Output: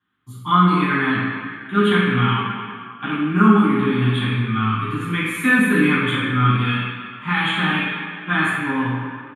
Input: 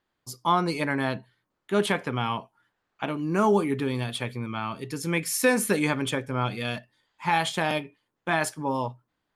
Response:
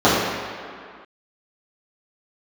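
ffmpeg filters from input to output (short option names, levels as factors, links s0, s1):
-filter_complex "[0:a]firequalizer=gain_entry='entry(220,0);entry(600,-24);entry(1200,3);entry(2300,6);entry(3500,4);entry(5200,-25);entry(8300,3)':delay=0.05:min_phase=1[s0];[1:a]atrim=start_sample=2205[s1];[s0][s1]afir=irnorm=-1:irlink=0,volume=0.126"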